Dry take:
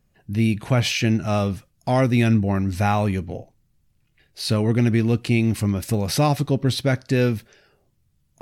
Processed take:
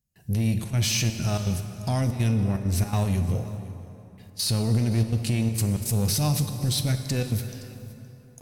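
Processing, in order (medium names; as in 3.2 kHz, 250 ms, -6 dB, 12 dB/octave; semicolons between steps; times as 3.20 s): high-pass 42 Hz 6 dB/octave; gate with hold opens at -56 dBFS; tone controls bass +9 dB, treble +9 dB; harmonic-percussive split harmonic +4 dB; treble shelf 3.5 kHz +9 dB; level rider gain up to 12 dB; peak limiter -9.5 dBFS, peak gain reduction 9 dB; saturation -13.5 dBFS, distortion -17 dB; trance gate "xxxxxxx.xxxx.xx." 164 bpm -12 dB; on a send: delay 518 ms -19.5 dB; on the sum: plate-style reverb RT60 3.4 s, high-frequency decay 0.6×, DRR 7.5 dB; trim -5 dB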